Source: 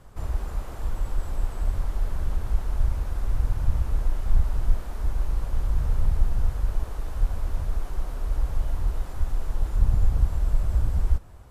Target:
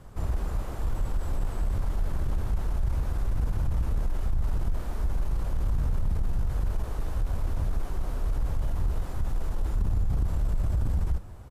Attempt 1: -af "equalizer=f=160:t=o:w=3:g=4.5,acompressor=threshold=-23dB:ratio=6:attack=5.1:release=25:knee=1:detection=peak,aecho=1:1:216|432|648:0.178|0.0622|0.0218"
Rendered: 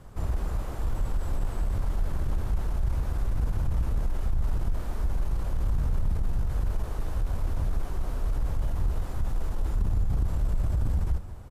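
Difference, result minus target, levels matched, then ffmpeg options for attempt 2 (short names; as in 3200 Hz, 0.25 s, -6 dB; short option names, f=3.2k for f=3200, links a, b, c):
echo-to-direct +7.5 dB
-af "equalizer=f=160:t=o:w=3:g=4.5,acompressor=threshold=-23dB:ratio=6:attack=5.1:release=25:knee=1:detection=peak,aecho=1:1:216|432:0.075|0.0262"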